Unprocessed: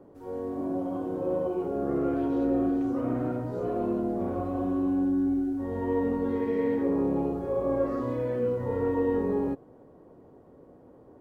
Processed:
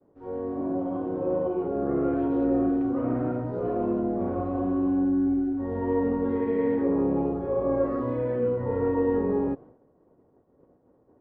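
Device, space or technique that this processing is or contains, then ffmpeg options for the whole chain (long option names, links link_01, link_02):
hearing-loss simulation: -af "lowpass=2300,agate=range=-33dB:threshold=-44dB:ratio=3:detection=peak,volume=2dB"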